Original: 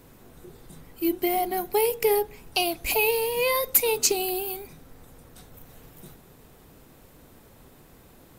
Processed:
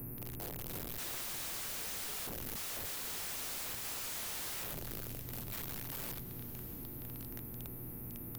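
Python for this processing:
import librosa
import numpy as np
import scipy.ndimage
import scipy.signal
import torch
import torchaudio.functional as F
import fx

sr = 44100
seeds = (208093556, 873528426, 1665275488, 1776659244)

y = fx.spec_steps(x, sr, hold_ms=100)
y = scipy.signal.sosfilt(scipy.signal.cheby2(4, 40, [690.0, 7200.0], 'bandstop', fs=sr, output='sos'), y)
y = fx.high_shelf(y, sr, hz=2200.0, db=5.5)
y = fx.hum_notches(y, sr, base_hz=50, count=8)
y = 10.0 ** (-28.0 / 20.0) * np.tanh(y / 10.0 ** (-28.0 / 20.0))
y = fx.dmg_buzz(y, sr, base_hz=120.0, harmonics=23, level_db=-59.0, tilt_db=-8, odd_only=False)
y = (np.mod(10.0 ** (43.5 / 20.0) * y + 1.0, 2.0) - 1.0) / 10.0 ** (43.5 / 20.0)
y = fx.echo_diffused(y, sr, ms=626, feedback_pct=47, wet_db=-16)
y = fx.band_squash(y, sr, depth_pct=40)
y = y * librosa.db_to_amplitude(7.0)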